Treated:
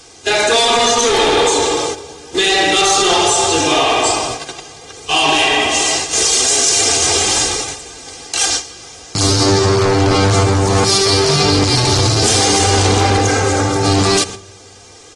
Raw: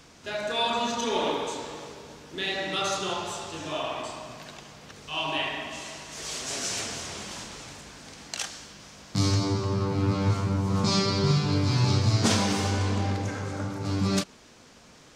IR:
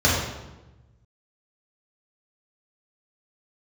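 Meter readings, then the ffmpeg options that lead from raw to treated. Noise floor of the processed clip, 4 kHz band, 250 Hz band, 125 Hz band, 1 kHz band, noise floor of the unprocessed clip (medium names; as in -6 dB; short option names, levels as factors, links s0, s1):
-40 dBFS, +17.5 dB, +10.5 dB, +9.0 dB, +16.5 dB, -53 dBFS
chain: -filter_complex "[0:a]bandreject=f=1800:w=14,agate=range=0.251:threshold=0.00891:ratio=16:detection=peak,equalizer=f=520:w=0.85:g=7,aecho=1:1:2.5:0.66,asoftclip=type=tanh:threshold=0.0631,crystalizer=i=4:c=0,asplit=2[s0][s1];[1:a]atrim=start_sample=2205,highshelf=f=4200:g=-8[s2];[s1][s2]afir=irnorm=-1:irlink=0,volume=0.00944[s3];[s0][s3]amix=inputs=2:normalize=0,aresample=22050,aresample=44100,alimiter=level_in=8.41:limit=0.891:release=50:level=0:latency=1,volume=0.596" -ar 44100 -c:a aac -b:a 32k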